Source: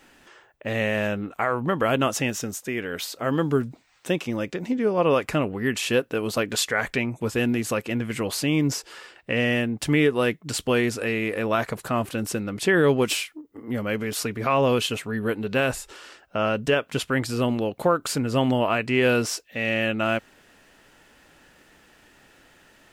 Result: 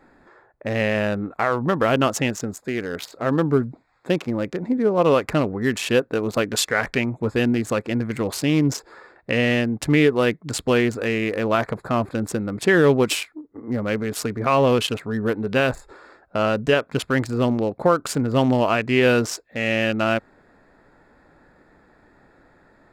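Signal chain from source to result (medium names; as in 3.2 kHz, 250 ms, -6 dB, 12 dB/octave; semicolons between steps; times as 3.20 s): local Wiener filter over 15 samples; trim +3.5 dB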